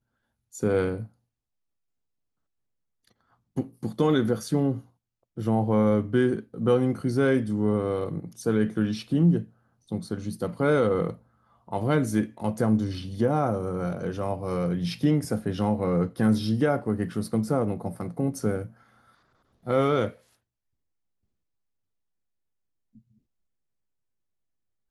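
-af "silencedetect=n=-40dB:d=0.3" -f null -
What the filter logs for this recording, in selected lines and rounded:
silence_start: 0.00
silence_end: 0.54 | silence_duration: 0.54
silence_start: 1.06
silence_end: 3.57 | silence_duration: 2.51
silence_start: 4.80
silence_end: 5.37 | silence_duration: 0.57
silence_start: 9.44
silence_end: 9.91 | silence_duration: 0.47
silence_start: 11.15
silence_end: 11.68 | silence_duration: 0.53
silence_start: 18.70
silence_end: 19.67 | silence_duration: 0.97
silence_start: 20.13
silence_end: 24.90 | silence_duration: 4.77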